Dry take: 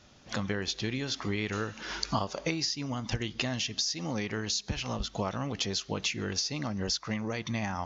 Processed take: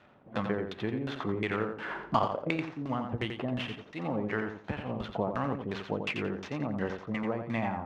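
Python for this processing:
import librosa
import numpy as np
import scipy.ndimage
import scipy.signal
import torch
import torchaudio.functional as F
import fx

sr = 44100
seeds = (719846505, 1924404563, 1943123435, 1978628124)

p1 = scipy.signal.medfilt(x, 9)
p2 = scipy.signal.sosfilt(scipy.signal.butter(2, 97.0, 'highpass', fs=sr, output='sos'), p1)
p3 = fx.low_shelf(p2, sr, hz=360.0, db=-8.5)
p4 = fx.quant_companded(p3, sr, bits=4)
p5 = p3 + (p4 * librosa.db_to_amplitude(-10.0))
p6 = fx.filter_lfo_lowpass(p5, sr, shape='saw_down', hz=2.8, low_hz=290.0, high_hz=3400.0, q=0.74)
p7 = p6 + fx.echo_feedback(p6, sr, ms=87, feedback_pct=22, wet_db=-6.5, dry=0)
y = p7 * librosa.db_to_amplitude(4.0)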